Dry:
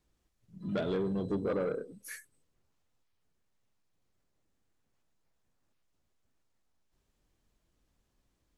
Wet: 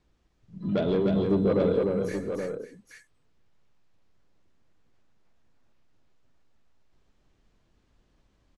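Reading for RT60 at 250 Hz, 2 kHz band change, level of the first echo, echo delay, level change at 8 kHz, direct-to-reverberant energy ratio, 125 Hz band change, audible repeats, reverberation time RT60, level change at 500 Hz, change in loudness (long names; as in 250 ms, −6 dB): no reverb audible, +4.0 dB, −18.0 dB, 114 ms, −1.5 dB, no reverb audible, +9.5 dB, 4, no reverb audible, +9.5 dB, +8.0 dB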